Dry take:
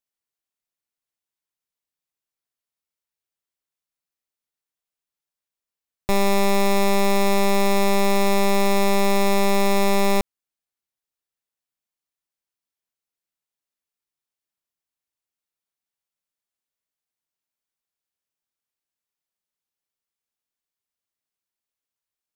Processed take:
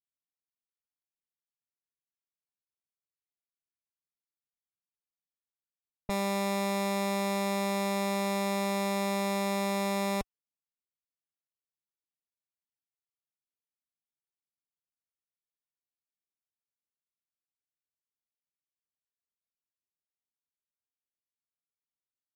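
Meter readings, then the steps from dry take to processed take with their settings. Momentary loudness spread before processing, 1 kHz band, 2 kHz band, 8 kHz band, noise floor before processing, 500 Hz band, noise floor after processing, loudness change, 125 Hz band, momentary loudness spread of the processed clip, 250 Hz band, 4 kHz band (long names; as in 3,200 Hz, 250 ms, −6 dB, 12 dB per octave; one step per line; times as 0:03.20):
3 LU, −9.5 dB, −9.5 dB, −9.5 dB, below −85 dBFS, −10.5 dB, below −85 dBFS, −10.0 dB, can't be measured, 3 LU, −8.5 dB, −9.5 dB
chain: low-pass that shuts in the quiet parts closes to 330 Hz, open at −18.5 dBFS
notch comb filter 370 Hz
level −8.5 dB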